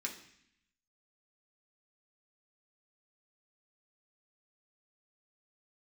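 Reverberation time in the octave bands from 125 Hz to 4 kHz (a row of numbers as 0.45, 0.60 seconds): 0.95, 0.95, 0.65, 0.70, 0.90, 0.85 seconds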